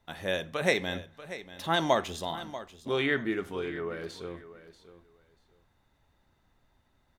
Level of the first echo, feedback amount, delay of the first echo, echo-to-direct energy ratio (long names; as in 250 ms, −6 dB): −14.5 dB, 19%, 638 ms, −14.5 dB